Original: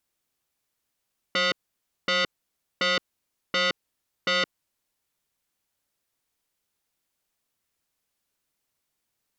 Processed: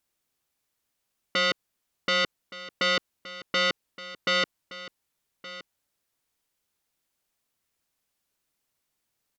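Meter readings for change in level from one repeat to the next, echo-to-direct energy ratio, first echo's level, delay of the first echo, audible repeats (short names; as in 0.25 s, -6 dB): no steady repeat, -16.5 dB, -16.5 dB, 1.17 s, 1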